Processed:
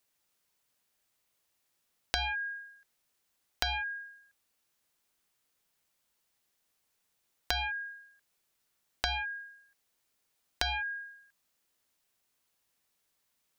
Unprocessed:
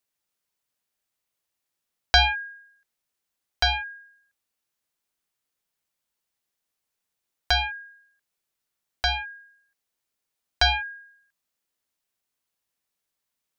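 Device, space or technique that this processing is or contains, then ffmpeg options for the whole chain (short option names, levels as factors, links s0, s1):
serial compression, leveller first: -af "acompressor=threshold=0.0562:ratio=2.5,acompressor=threshold=0.0158:ratio=5,volume=1.78"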